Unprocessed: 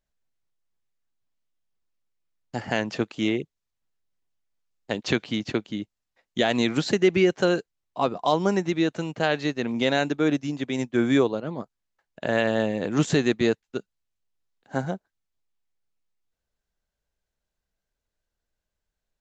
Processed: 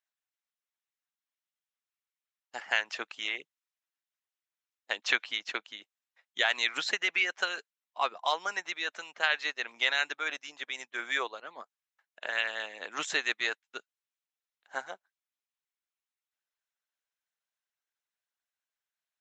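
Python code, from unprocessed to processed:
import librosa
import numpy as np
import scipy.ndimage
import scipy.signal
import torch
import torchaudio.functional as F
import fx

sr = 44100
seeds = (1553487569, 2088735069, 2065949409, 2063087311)

y = scipy.signal.sosfilt(scipy.signal.butter(2, 1300.0, 'highpass', fs=sr, output='sos'), x)
y = fx.high_shelf(y, sr, hz=3600.0, db=-7.0)
y = fx.notch(y, sr, hz=4600.0, q=12.0)
y = fx.dynamic_eq(y, sr, hz=2100.0, q=0.77, threshold_db=-37.0, ratio=4.0, max_db=3)
y = fx.hpss(y, sr, part='harmonic', gain_db=-10)
y = y * 10.0 ** (3.5 / 20.0)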